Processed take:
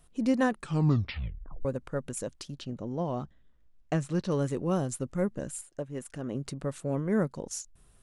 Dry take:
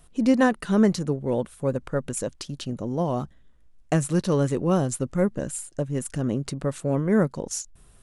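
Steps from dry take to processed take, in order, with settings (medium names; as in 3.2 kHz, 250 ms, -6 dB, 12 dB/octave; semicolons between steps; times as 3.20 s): 0.52 s: tape stop 1.13 s; 2.54–4.31 s: low-pass 5.5 kHz 12 dB/octave; 5.61–6.35 s: tone controls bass -7 dB, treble -6 dB; trim -6.5 dB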